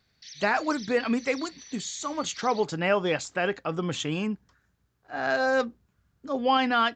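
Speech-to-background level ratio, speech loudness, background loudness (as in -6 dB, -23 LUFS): 16.0 dB, -27.5 LUFS, -43.5 LUFS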